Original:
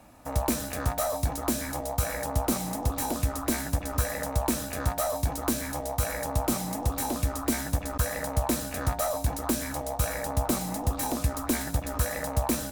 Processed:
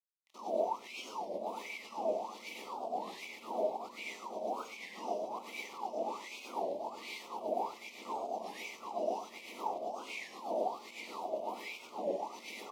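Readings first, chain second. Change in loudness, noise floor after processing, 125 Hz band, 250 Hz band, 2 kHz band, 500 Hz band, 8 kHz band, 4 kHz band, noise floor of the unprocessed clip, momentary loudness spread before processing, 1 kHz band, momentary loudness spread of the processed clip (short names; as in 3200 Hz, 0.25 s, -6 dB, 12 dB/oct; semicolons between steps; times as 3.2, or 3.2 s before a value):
-10.5 dB, -54 dBFS, under -35 dB, -17.5 dB, -9.0 dB, -5.0 dB, -22.5 dB, -9.5 dB, -37 dBFS, 2 LU, -5.5 dB, 8 LU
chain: spectrum mirrored in octaves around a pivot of 1900 Hz; low shelf 220 Hz -9 dB; bit-crush 5-bit; non-linear reverb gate 0.13 s rising, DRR -4.5 dB; wah 1.3 Hz 620–2300 Hz, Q 14; Butterworth band-stop 1600 Hz, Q 0.98; on a send: echo 0.86 s -10 dB; on the sum: record warp 33 1/3 rpm, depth 160 cents; gain +8 dB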